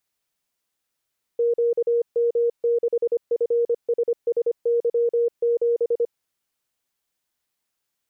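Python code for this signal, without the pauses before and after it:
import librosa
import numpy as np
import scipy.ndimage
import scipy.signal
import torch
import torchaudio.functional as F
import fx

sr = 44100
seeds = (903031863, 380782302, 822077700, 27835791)

y = fx.morse(sr, text='QM6FSSY7', wpm=25, hz=471.0, level_db=-17.0)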